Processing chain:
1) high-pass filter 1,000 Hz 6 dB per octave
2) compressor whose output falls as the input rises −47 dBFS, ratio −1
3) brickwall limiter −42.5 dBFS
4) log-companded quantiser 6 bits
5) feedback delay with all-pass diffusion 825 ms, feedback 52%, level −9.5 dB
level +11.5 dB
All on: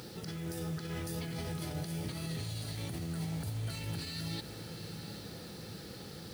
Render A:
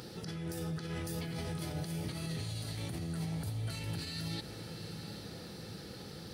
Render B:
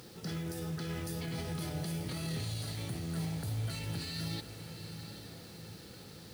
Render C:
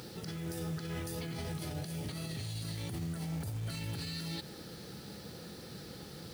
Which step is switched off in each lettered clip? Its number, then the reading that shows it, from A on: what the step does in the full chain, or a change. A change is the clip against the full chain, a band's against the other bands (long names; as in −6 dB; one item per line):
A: 4, distortion level −19 dB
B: 2, change in momentary loudness spread +4 LU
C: 5, echo-to-direct ratio −8.0 dB to none audible